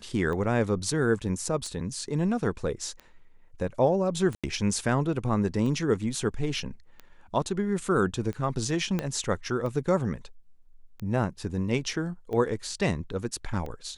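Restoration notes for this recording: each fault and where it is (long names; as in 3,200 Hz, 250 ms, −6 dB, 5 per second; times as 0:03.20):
scratch tick 45 rpm −25 dBFS
0:04.35–0:04.44: drop-out 86 ms
0:08.99: click −15 dBFS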